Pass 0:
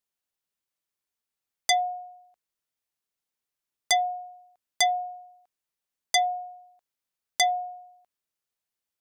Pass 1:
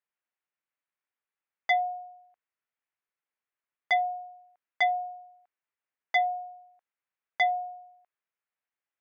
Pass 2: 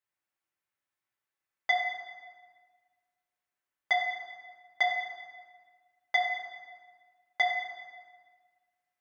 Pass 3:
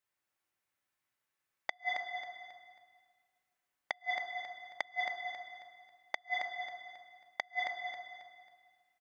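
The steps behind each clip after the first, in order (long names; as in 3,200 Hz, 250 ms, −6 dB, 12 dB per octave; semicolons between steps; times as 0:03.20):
low-pass filter 2,200 Hz 24 dB per octave; spectral tilt +3.5 dB per octave
convolution reverb RT60 1.5 s, pre-delay 4 ms, DRR −1.5 dB; level −1.5 dB
gate with flip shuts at −20 dBFS, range −39 dB; on a send: repeating echo 271 ms, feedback 35%, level −7 dB; on the sum: level +2 dB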